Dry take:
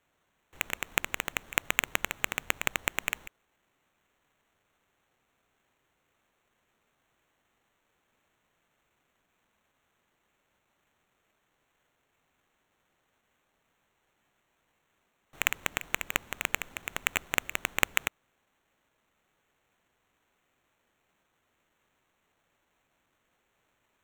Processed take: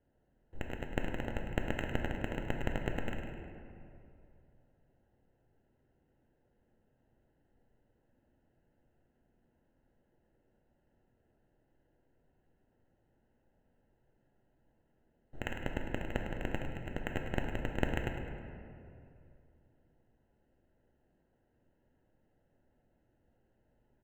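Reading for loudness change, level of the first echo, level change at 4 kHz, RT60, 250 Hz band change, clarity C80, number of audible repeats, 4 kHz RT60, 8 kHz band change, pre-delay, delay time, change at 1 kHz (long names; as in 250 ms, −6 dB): −8.0 dB, −9.5 dB, −14.5 dB, 2.6 s, +7.0 dB, 4.0 dB, 1, 1.2 s, −24.0 dB, 4 ms, 104 ms, −6.5 dB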